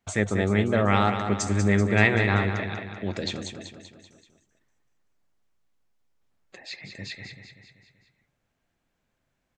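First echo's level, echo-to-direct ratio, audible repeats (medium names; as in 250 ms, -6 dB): -8.0 dB, -6.5 dB, 5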